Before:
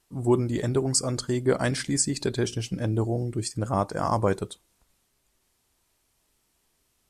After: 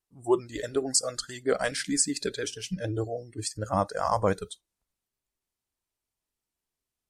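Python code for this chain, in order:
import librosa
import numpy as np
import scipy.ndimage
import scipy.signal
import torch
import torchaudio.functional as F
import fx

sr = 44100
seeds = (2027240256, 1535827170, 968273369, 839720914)

y = fx.noise_reduce_blind(x, sr, reduce_db=18)
y = fx.vibrato(y, sr, rate_hz=13.0, depth_cents=48.0)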